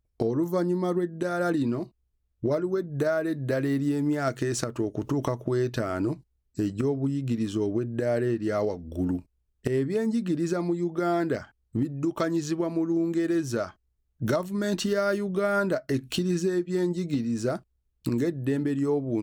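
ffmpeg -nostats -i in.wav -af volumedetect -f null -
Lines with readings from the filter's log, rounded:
mean_volume: -27.4 dB
max_volume: -11.9 dB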